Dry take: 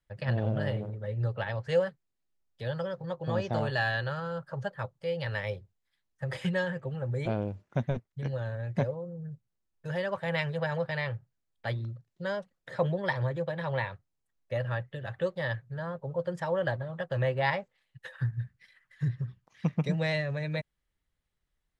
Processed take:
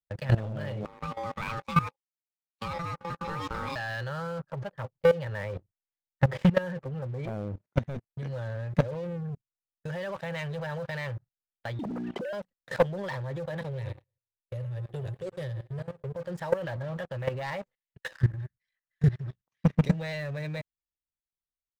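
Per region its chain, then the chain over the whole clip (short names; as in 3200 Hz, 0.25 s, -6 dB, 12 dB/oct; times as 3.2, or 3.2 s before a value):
0.85–3.76 HPF 190 Hz + ring modulator 680 Hz
4.39–7.62 LPF 1300 Hz 6 dB/oct + transient shaper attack +10 dB, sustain -1 dB
11.79–12.33 sine-wave speech + notches 60/120/180/240/300/360/420 Hz + fast leveller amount 100%
13.61–16.16 EQ curve 130 Hz 0 dB, 270 Hz -27 dB, 400 Hz +1 dB, 630 Hz -14 dB, 1200 Hz -27 dB, 2200 Hz -15 dB, 5500 Hz -10 dB, 8000 Hz +1 dB + feedback echo 0.105 s, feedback 37%, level -13 dB
whole clip: gate -50 dBFS, range -12 dB; sample leveller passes 3; level quantiser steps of 17 dB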